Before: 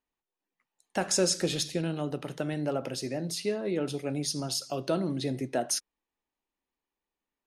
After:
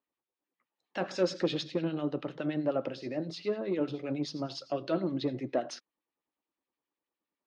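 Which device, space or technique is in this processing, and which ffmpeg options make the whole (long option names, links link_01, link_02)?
guitar amplifier with harmonic tremolo: -filter_complex "[0:a]acrossover=split=1400[link_01][link_02];[link_01]aeval=exprs='val(0)*(1-0.7/2+0.7/2*cos(2*PI*9.7*n/s))':channel_layout=same[link_03];[link_02]aeval=exprs='val(0)*(1-0.7/2-0.7/2*cos(2*PI*9.7*n/s))':channel_layout=same[link_04];[link_03][link_04]amix=inputs=2:normalize=0,asoftclip=type=tanh:threshold=-22dB,highpass=110,equalizer=frequency=310:width_type=q:width=4:gain=6,equalizer=frequency=550:width_type=q:width=4:gain=5,equalizer=frequency=1200:width_type=q:width=4:gain=4,lowpass=frequency=4400:width=0.5412,lowpass=frequency=4400:width=1.3066"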